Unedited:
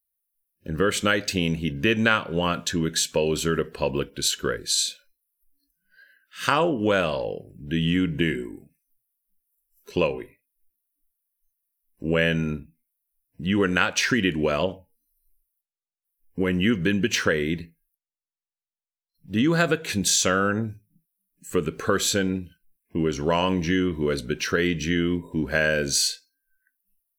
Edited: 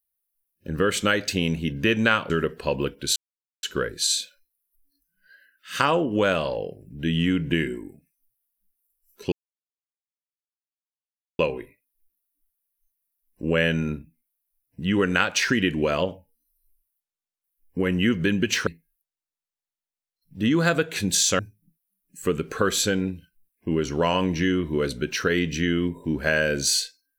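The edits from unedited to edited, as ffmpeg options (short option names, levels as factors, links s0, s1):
-filter_complex "[0:a]asplit=6[s0][s1][s2][s3][s4][s5];[s0]atrim=end=2.302[s6];[s1]atrim=start=3.448:end=4.31,asetpts=PTS-STARTPTS,afade=t=out:st=0.858:d=0.004:c=hsin,apad=pad_dur=0.47[s7];[s2]atrim=start=4.31:end=10,asetpts=PTS-STARTPTS,afade=t=in:d=0.004:c=hsin,afade=t=out:st=5.686:d=0.004:c=hsin,apad=pad_dur=2.07[s8];[s3]atrim=start=10:end=17.282,asetpts=PTS-STARTPTS,afade=t=in:d=0.004:c=hsin[s9];[s4]atrim=start=17.598:end=20.322[s10];[s5]atrim=start=20.668[s11];[s7][s8][s9]concat=n=3:v=0:a=1[s12];[s6][s12]acrossfade=d=0.004:c1=hsin:c2=hsin[s13];[s13][s10]acrossfade=d=0.004:c1=hsin:c2=hsin[s14];[s14][s11]acrossfade=d=0.004:c1=hsin:c2=hsin"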